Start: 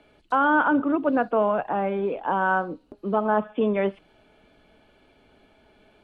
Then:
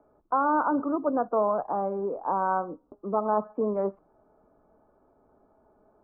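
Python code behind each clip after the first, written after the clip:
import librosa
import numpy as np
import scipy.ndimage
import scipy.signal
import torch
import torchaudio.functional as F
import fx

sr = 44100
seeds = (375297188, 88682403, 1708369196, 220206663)

y = scipy.signal.sosfilt(scipy.signal.ellip(4, 1.0, 80, 1200.0, 'lowpass', fs=sr, output='sos'), x)
y = fx.low_shelf(y, sr, hz=440.0, db=-7.0)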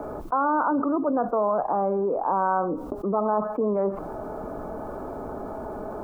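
y = fx.env_flatten(x, sr, amount_pct=70)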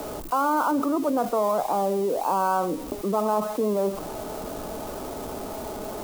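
y = x + 0.5 * 10.0 ** (-28.0 / 20.0) * np.diff(np.sign(x), prepend=np.sign(x[:1]))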